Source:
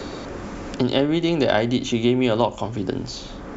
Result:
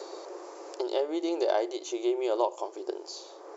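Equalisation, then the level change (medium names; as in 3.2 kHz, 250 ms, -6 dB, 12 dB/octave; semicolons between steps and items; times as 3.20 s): brick-wall FIR high-pass 320 Hz; high-order bell 2.2 kHz -10 dB; -6.0 dB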